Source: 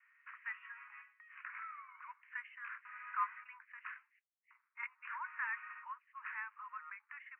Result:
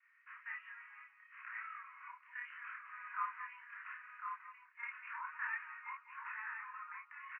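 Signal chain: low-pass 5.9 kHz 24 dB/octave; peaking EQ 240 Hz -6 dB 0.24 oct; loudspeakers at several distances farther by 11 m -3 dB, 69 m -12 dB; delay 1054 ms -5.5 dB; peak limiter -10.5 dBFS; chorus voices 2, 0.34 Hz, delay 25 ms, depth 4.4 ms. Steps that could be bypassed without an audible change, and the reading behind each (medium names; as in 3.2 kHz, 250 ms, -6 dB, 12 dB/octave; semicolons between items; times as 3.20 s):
low-pass 5.9 kHz: input has nothing above 2.7 kHz; peaking EQ 240 Hz: input has nothing below 850 Hz; peak limiter -10.5 dBFS: peak at its input -24.0 dBFS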